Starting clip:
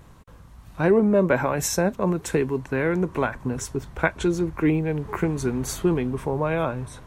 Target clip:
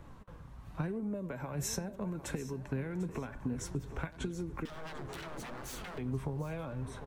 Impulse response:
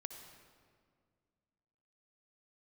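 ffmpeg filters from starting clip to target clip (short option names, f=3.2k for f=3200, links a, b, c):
-filter_complex "[0:a]highshelf=f=3.7k:g=-10,acrossover=split=7500[a][b];[a]acompressor=threshold=-27dB:ratio=10[c];[c][b]amix=inputs=2:normalize=0,asplit=2[d][e];[e]adelay=90,highpass=300,lowpass=3.4k,asoftclip=type=hard:threshold=-26dB,volume=-18dB[f];[d][f]amix=inputs=2:normalize=0,asettb=1/sr,asplit=3[g][h][i];[g]atrim=end=4.654[j];[h]atrim=start=4.65:end=5.98,asetpts=PTS-STARTPTS,afade=t=in:d=0.004:c=qsin,afade=t=out:st=1.326:d=0.004:c=qsin,aeval=exprs='0.015*(abs(mod(val(0)/0.015+3,4)-2)-1)':c=same[k];[i]atrim=start=5.976[l];[j][k]acrossfade=d=0.004:c1=hsin:c2=qsin[m];[m][l]acrossfade=d=0.004:c1=qsin:c2=hsin,flanger=delay=3.4:depth=4.1:regen=61:speed=0.89:shape=sinusoidal,asplit=2[n][o];[o]aecho=0:1:746|1492|2238:0.158|0.0539|0.0183[p];[n][p]amix=inputs=2:normalize=0,acrossover=split=230|3000[q][r][s];[r]acompressor=threshold=-43dB:ratio=6[t];[q][t][s]amix=inputs=3:normalize=0,volume=2dB"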